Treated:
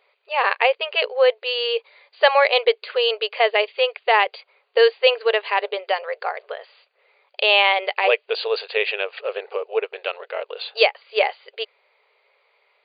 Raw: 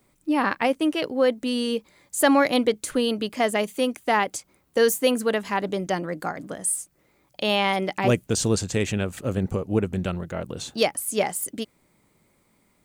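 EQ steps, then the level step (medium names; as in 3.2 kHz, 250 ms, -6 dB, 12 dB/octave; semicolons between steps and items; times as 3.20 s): peaking EQ 2.6 kHz +7.5 dB 0.5 oct; dynamic bell 1.4 kHz, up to -4 dB, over -42 dBFS, Q 6.5; brick-wall FIR band-pass 400–4800 Hz; +4.5 dB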